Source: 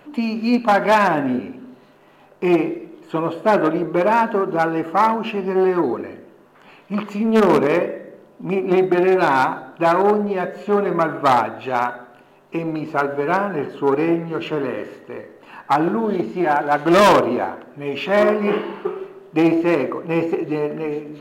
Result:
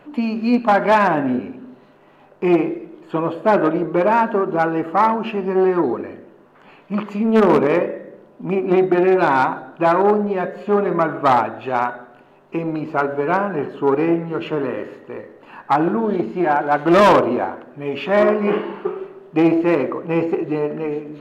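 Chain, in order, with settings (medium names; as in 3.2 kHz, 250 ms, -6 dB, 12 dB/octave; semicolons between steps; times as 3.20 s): treble shelf 4.1 kHz -10 dB; trim +1 dB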